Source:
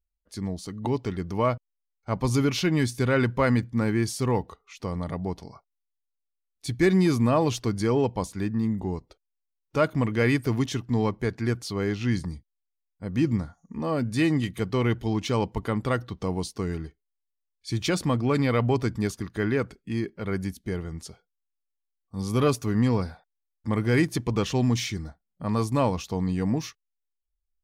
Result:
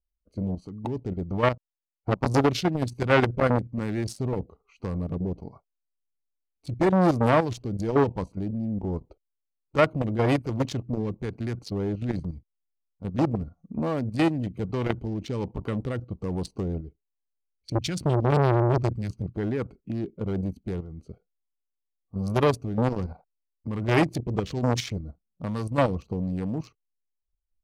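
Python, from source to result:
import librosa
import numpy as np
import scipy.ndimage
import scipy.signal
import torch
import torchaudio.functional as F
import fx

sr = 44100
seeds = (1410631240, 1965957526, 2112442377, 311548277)

y = fx.wiener(x, sr, points=25)
y = fx.transient(y, sr, attack_db=12, sustain_db=-12, at=(1.51, 2.47), fade=0.02)
y = fx.graphic_eq(y, sr, hz=(125, 500, 1000), db=(8, -9, -6), at=(17.75, 19.34))
y = fx.level_steps(y, sr, step_db=11)
y = fx.rotary(y, sr, hz=1.2)
y = fx.transformer_sat(y, sr, knee_hz=1100.0)
y = y * librosa.db_to_amplitude(8.0)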